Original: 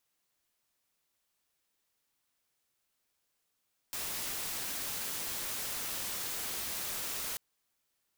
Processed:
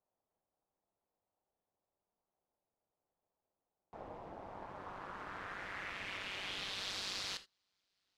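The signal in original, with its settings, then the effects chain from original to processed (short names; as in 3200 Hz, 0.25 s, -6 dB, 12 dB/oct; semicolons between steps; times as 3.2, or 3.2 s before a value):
noise white, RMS -37.5 dBFS 3.44 s
low-pass sweep 720 Hz -> 4400 Hz, 4.38–7.01; ring modulator 97 Hz; non-linear reverb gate 0.1 s flat, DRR 11 dB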